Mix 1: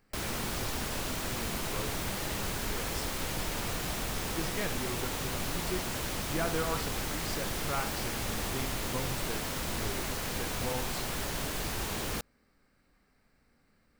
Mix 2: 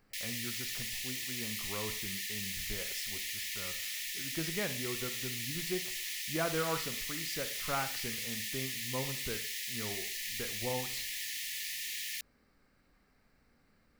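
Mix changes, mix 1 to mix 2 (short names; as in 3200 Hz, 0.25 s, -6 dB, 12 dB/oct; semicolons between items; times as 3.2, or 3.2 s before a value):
background: add brick-wall FIR high-pass 1700 Hz; master: add bell 8400 Hz -4 dB 0.22 oct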